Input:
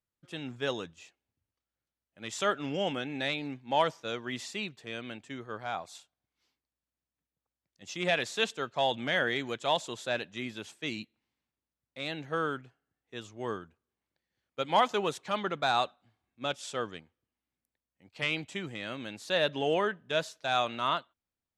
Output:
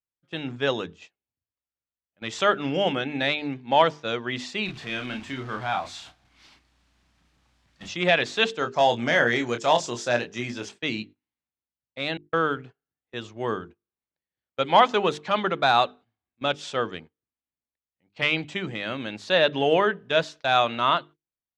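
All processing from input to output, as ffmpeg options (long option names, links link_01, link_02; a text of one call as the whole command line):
ffmpeg -i in.wav -filter_complex "[0:a]asettb=1/sr,asplit=3[link_01][link_02][link_03];[link_01]atrim=end=4.654[link_04];[link_02]atrim=start=4.65:end=7.89,asetpts=PTS-STARTPTS,afade=type=in:duration=0.004:curve=qsin,afade=type=out:start_time=3.236:duration=0.004:curve=qsin,aeval=exprs='val(0)+0.5*0.00447*sgn(val(0))':channel_layout=same,equalizer=frequency=490:width_type=o:width=0.66:gain=-8,asplit=2[link_05][link_06];[link_06]adelay=32,volume=-5dB[link_07];[link_05][link_07]amix=inputs=2:normalize=0,atrim=end_sample=142884[link_08];[link_03]atrim=start=7.886[link_09];[link_04][link_08]acrossfade=duration=0.004:curve1=hsin:curve2=qsin[link_10];[link_10][link_09]acrossfade=duration=0.004:curve1=qsin:curve2=hsin,asettb=1/sr,asplit=3[link_11][link_12][link_13];[link_11]atrim=end=8.594[link_14];[link_12]atrim=start=8.59:end=10.69,asetpts=PTS-STARTPTS,afade=type=in:duration=0.004:curve=qsin,afade=type=out:start_time=2.096:duration=0.004:curve=qsin,highshelf=frequency=4500:width_type=q:width=3:gain=6,asplit=2[link_15][link_16];[link_16]adelay=25,volume=-7dB[link_17];[link_15][link_17]amix=inputs=2:normalize=0,atrim=end_sample=92610[link_18];[link_13]atrim=start=10.686[link_19];[link_14][link_18]acrossfade=duration=0.004:curve1=hsin:curve2=qsin[link_20];[link_20][link_19]acrossfade=duration=0.004:curve1=qsin:curve2=hsin,asettb=1/sr,asplit=3[link_21][link_22][link_23];[link_21]atrim=end=12.174[link_24];[link_22]atrim=start=12.17:end=12.57,asetpts=PTS-STARTPTS,afade=type=in:duration=0.004:curve=qsin,afade=type=out:start_time=0.396:duration=0.004:curve=qsin,lowpass=10000,agate=range=-51dB:threshold=-35dB:ratio=16:release=100:detection=peak[link_25];[link_23]atrim=start=12.566[link_26];[link_24][link_25]acrossfade=duration=0.004:curve1=hsin:curve2=qsin[link_27];[link_27][link_26]acrossfade=duration=0.004:curve1=qsin:curve2=hsin,bandreject=frequency=50:width_type=h:width=6,bandreject=frequency=100:width_type=h:width=6,bandreject=frequency=150:width_type=h:width=6,bandreject=frequency=200:width_type=h:width=6,bandreject=frequency=250:width_type=h:width=6,bandreject=frequency=300:width_type=h:width=6,bandreject=frequency=350:width_type=h:width=6,bandreject=frequency=400:width_type=h:width=6,bandreject=frequency=450:width_type=h:width=6,agate=range=-17dB:threshold=-51dB:ratio=16:detection=peak,lowpass=4700,volume=8dB" out.wav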